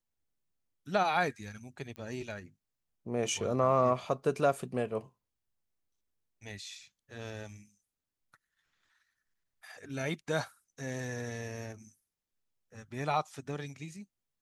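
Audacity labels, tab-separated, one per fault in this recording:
1.960000	1.960000	pop -31 dBFS

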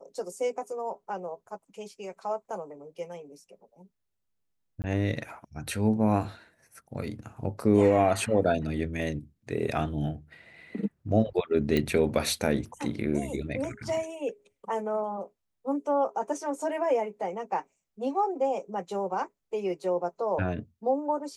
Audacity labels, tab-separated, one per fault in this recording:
4.820000	4.840000	dropout 19 ms
11.770000	11.770000	pop -14 dBFS

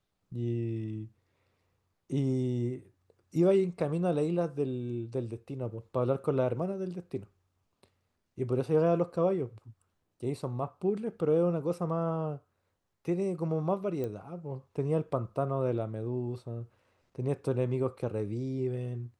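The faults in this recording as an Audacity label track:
14.040000	14.040000	pop -24 dBFS

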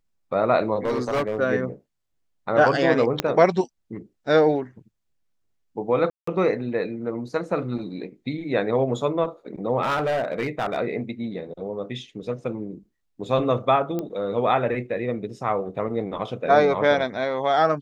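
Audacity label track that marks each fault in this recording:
0.850000	1.390000	clipped -19.5 dBFS
3.200000	3.200000	pop -6 dBFS
6.100000	6.270000	dropout 174 ms
9.820000	10.780000	clipped -20 dBFS
13.990000	13.990000	pop -16 dBFS

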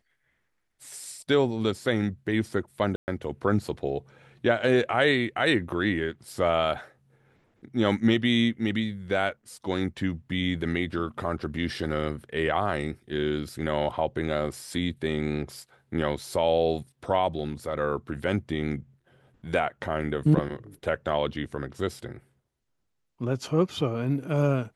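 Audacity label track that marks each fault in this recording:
2.960000	3.080000	dropout 119 ms

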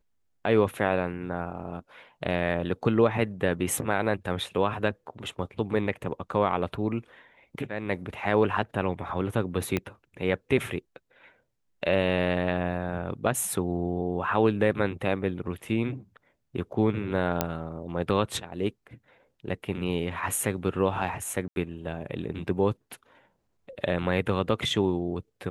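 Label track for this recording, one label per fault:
9.770000	9.770000	pop -13 dBFS
17.410000	17.410000	pop -7 dBFS
21.480000	21.560000	dropout 81 ms

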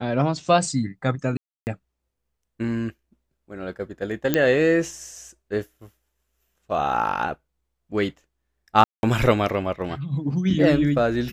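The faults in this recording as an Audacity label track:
1.370000	1.670000	dropout 299 ms
4.340000	4.340000	pop -5 dBFS
8.840000	9.030000	dropout 191 ms

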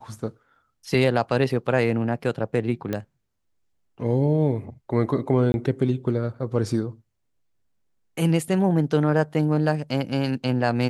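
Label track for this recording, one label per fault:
2.930000	2.930000	pop -14 dBFS
5.520000	5.540000	dropout 21 ms

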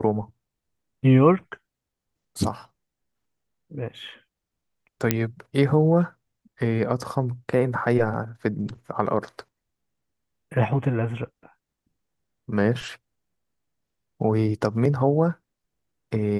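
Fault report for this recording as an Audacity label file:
5.110000	5.110000	pop -4 dBFS

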